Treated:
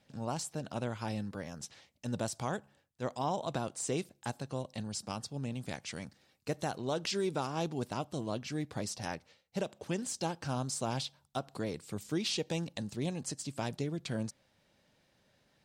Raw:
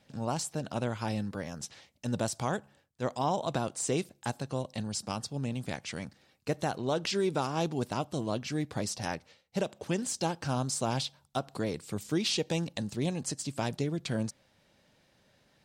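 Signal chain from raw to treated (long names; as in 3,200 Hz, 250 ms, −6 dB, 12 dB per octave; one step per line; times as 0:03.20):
0:05.65–0:07.35: bass and treble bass 0 dB, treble +3 dB
level −4 dB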